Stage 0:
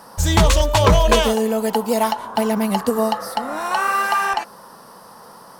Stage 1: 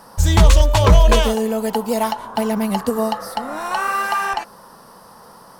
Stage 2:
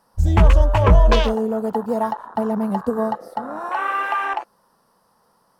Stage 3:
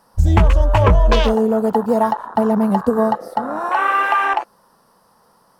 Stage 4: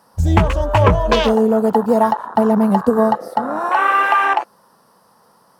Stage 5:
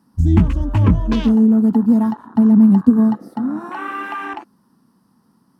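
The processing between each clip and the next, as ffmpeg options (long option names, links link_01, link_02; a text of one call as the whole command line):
ffmpeg -i in.wav -af "lowshelf=frequency=85:gain=10,volume=-1.5dB" out.wav
ffmpeg -i in.wav -af "afwtdn=0.0631,volume=-1.5dB" out.wav
ffmpeg -i in.wav -af "acompressor=threshold=-15dB:ratio=5,volume=6dB" out.wav
ffmpeg -i in.wav -af "highpass=83,volume=2dB" out.wav
ffmpeg -i in.wav -af "lowshelf=frequency=380:width_type=q:width=3:gain=11.5,volume=-11dB" out.wav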